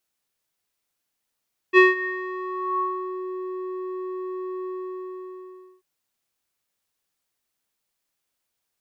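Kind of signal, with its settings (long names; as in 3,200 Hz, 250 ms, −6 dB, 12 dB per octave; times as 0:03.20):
subtractive voice square F#4 12 dB per octave, low-pass 810 Hz, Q 9, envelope 1.5 octaves, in 1.52 s, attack 46 ms, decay 0.17 s, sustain −20 dB, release 1.16 s, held 2.93 s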